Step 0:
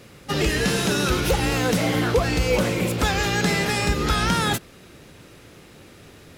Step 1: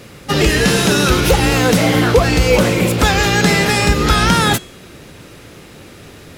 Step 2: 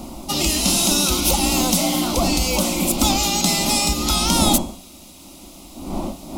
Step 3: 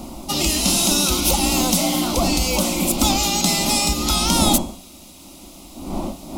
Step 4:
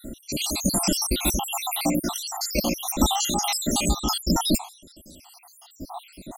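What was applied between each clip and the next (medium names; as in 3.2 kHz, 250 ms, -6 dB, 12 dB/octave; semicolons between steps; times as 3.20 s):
de-hum 368.6 Hz, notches 27; trim +8.5 dB
wind noise 370 Hz -20 dBFS; treble shelf 3.7 kHz +11 dB; static phaser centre 450 Hz, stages 6; trim -5 dB
no audible change
random holes in the spectrogram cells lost 77%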